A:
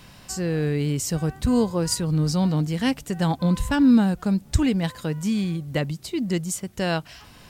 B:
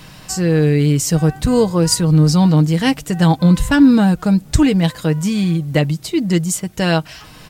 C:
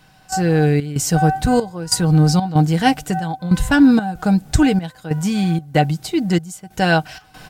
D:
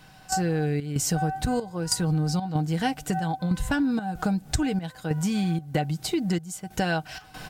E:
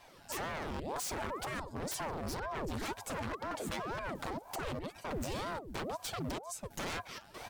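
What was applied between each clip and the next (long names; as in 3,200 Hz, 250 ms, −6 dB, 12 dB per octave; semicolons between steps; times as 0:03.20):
comb filter 6.4 ms, depth 43%; level +7.5 dB
gate pattern "..xxx.xxxx" 94 BPM −12 dB; hollow resonant body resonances 760/1,500 Hz, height 17 dB, ringing for 95 ms; level −1.5 dB
downward compressor 6 to 1, threshold −23 dBFS, peak gain reduction 15 dB
wave folding −26.5 dBFS; ring modulator whose carrier an LFO sweeps 460 Hz, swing 90%, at 2 Hz; level −4 dB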